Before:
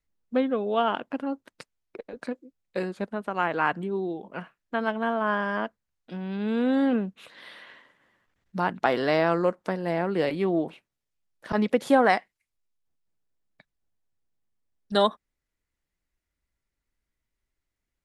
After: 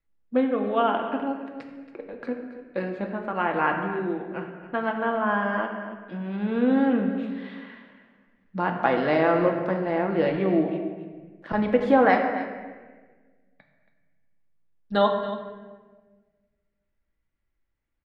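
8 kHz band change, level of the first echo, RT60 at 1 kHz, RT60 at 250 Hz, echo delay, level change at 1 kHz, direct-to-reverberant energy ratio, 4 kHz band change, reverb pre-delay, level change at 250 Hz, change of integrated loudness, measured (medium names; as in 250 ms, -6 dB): no reading, -13.5 dB, 1.3 s, 1.8 s, 277 ms, +2.0 dB, 2.0 dB, -3.5 dB, 4 ms, +2.5 dB, +1.5 dB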